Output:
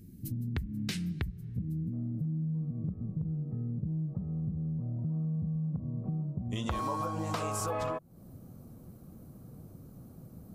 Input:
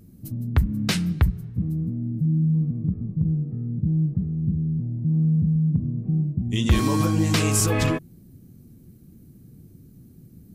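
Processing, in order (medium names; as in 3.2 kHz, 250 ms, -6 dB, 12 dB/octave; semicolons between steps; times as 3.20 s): high-order bell 830 Hz -8.5 dB, from 1.92 s +8 dB, from 4.08 s +14.5 dB; compression 6:1, threshold -30 dBFS, peak gain reduction 17 dB; trim -2 dB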